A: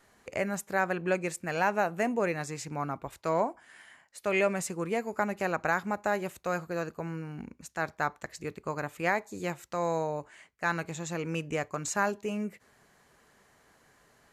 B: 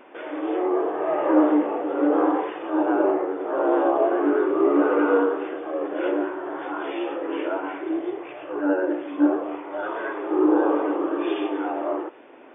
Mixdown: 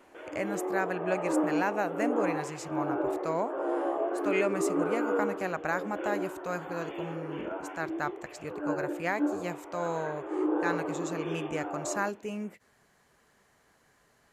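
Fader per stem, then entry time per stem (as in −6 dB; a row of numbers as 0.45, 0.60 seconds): −3.0, −10.0 decibels; 0.00, 0.00 seconds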